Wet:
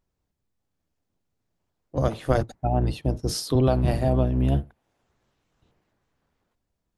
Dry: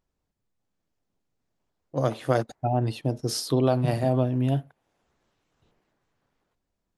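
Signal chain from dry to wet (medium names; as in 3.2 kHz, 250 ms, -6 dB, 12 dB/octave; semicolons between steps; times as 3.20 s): octave divider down 1 oct, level 0 dB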